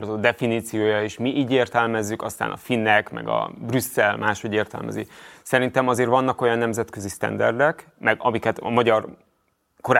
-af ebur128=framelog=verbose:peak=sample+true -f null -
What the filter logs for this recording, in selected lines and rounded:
Integrated loudness:
  I:         -22.2 LUFS
  Threshold: -32.6 LUFS
Loudness range:
  LRA:         1.6 LU
  Threshold: -42.5 LUFS
  LRA low:   -23.3 LUFS
  LRA high:  -21.7 LUFS
Sample peak:
  Peak:       -1.2 dBFS
True peak:
  Peak:       -1.2 dBFS